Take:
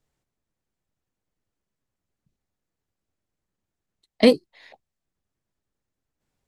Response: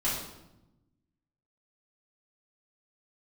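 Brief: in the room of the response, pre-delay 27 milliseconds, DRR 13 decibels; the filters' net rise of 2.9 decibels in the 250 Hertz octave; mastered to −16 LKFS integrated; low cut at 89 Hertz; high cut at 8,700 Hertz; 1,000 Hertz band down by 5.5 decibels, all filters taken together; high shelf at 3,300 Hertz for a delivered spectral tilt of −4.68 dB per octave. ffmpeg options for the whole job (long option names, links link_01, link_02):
-filter_complex "[0:a]highpass=89,lowpass=8700,equalizer=frequency=250:width_type=o:gain=3.5,equalizer=frequency=1000:width_type=o:gain=-9,highshelf=frequency=3300:gain=-3,asplit=2[link_01][link_02];[1:a]atrim=start_sample=2205,adelay=27[link_03];[link_02][link_03]afir=irnorm=-1:irlink=0,volume=-21.5dB[link_04];[link_01][link_04]amix=inputs=2:normalize=0,volume=2.5dB"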